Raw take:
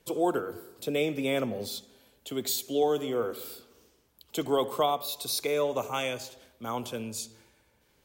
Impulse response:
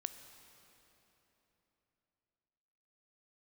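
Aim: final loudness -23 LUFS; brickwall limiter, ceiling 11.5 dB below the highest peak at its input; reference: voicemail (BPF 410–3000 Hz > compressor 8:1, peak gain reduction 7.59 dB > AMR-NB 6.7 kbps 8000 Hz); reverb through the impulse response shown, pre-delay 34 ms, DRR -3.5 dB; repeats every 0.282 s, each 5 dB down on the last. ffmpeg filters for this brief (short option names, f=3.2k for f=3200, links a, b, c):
-filter_complex "[0:a]alimiter=level_in=2.5dB:limit=-24dB:level=0:latency=1,volume=-2.5dB,aecho=1:1:282|564|846|1128|1410|1692|1974:0.562|0.315|0.176|0.0988|0.0553|0.031|0.0173,asplit=2[a][b];[1:a]atrim=start_sample=2205,adelay=34[c];[b][c]afir=irnorm=-1:irlink=0,volume=5.5dB[d];[a][d]amix=inputs=2:normalize=0,highpass=410,lowpass=3k,acompressor=threshold=-32dB:ratio=8,volume=16.5dB" -ar 8000 -c:a libopencore_amrnb -b:a 6700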